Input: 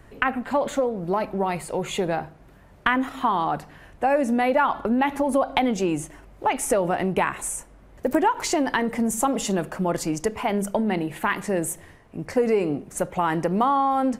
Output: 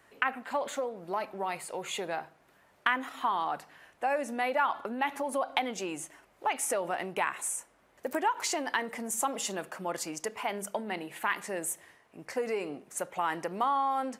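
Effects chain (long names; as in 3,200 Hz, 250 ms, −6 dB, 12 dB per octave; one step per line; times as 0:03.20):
high-pass filter 930 Hz 6 dB per octave
level −4 dB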